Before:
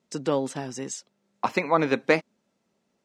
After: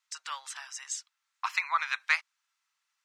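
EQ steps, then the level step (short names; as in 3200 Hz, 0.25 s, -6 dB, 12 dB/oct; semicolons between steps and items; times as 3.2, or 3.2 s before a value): steep high-pass 1100 Hz 36 dB/oct; 0.0 dB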